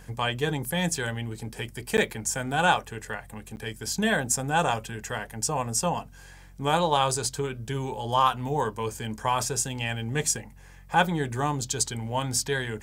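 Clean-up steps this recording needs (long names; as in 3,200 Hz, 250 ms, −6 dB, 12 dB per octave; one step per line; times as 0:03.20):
hum removal 45.7 Hz, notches 4
repair the gap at 0:01.97/0:03.56, 9.9 ms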